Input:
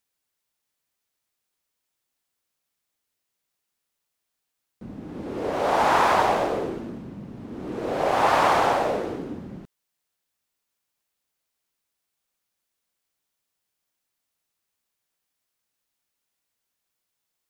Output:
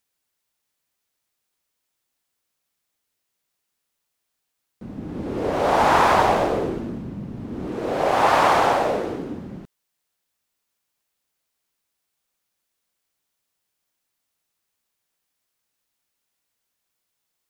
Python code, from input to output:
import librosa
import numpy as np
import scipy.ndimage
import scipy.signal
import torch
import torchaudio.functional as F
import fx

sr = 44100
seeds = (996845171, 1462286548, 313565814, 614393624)

y = fx.low_shelf(x, sr, hz=180.0, db=7.0, at=(4.96, 7.67))
y = y * 10.0 ** (2.5 / 20.0)